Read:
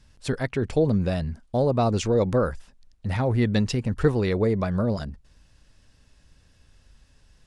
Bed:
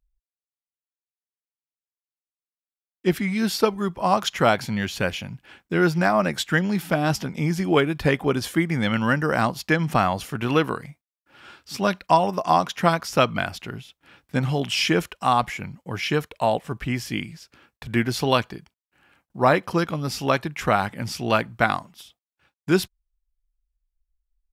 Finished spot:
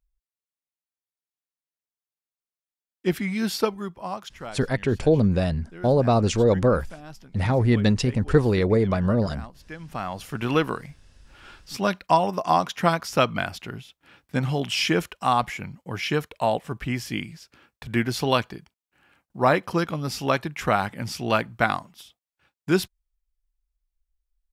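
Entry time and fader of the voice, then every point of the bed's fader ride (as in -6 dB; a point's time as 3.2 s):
4.30 s, +2.5 dB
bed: 3.6 s -2.5 dB
4.57 s -20.5 dB
9.66 s -20.5 dB
10.36 s -1.5 dB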